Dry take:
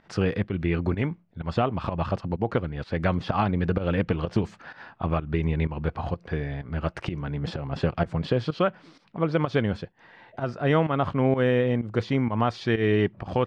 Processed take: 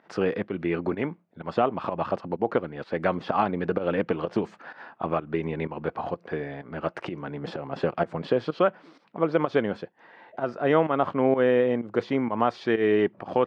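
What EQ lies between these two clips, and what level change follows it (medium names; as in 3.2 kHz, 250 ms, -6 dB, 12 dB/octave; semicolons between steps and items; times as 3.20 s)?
high-pass 290 Hz 12 dB/octave; treble shelf 2.4 kHz -11 dB; +3.5 dB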